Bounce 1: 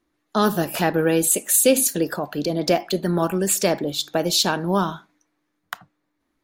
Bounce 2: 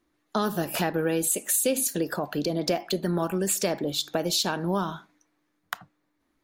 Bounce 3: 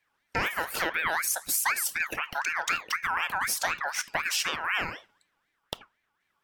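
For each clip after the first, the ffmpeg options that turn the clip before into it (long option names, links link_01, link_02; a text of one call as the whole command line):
ffmpeg -i in.wav -af "acompressor=threshold=-25dB:ratio=2.5" out.wav
ffmpeg -i in.wav -af "aeval=exprs='val(0)*sin(2*PI*1600*n/s+1600*0.3/4*sin(2*PI*4*n/s))':channel_layout=same" out.wav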